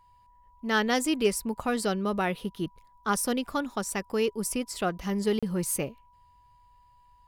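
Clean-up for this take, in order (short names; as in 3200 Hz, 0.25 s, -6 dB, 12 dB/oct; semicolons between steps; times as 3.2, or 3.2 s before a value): clip repair -15 dBFS; notch 980 Hz, Q 30; interpolate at 5.39, 36 ms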